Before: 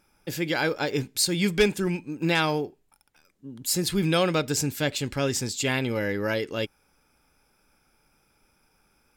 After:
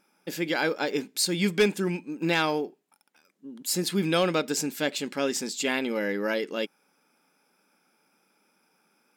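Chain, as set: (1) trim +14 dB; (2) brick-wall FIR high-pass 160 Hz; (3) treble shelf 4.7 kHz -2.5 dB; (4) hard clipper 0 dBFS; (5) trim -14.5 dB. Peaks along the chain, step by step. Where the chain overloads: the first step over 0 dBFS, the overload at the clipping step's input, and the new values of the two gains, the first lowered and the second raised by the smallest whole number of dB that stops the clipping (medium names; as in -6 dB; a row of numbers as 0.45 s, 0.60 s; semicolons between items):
+4.5 dBFS, +4.5 dBFS, +4.0 dBFS, 0.0 dBFS, -14.5 dBFS; step 1, 4.0 dB; step 1 +10 dB, step 5 -10.5 dB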